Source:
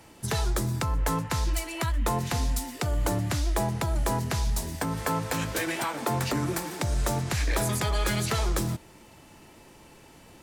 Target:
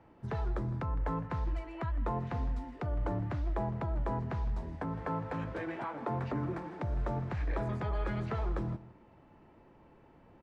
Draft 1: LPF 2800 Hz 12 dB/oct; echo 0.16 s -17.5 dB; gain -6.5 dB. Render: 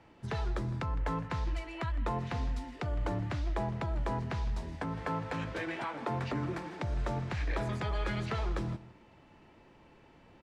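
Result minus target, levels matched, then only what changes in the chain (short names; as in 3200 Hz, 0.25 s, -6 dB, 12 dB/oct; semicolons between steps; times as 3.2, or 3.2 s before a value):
2000 Hz band +4.5 dB
change: LPF 1400 Hz 12 dB/oct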